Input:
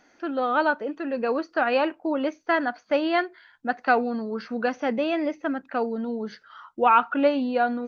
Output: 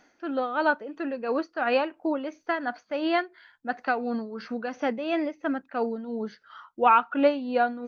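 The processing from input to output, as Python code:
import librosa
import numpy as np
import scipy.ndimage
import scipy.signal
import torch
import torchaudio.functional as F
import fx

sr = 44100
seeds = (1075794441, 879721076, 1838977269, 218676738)

y = x * (1.0 - 0.62 / 2.0 + 0.62 / 2.0 * np.cos(2.0 * np.pi * 2.9 * (np.arange(len(x)) / sr)))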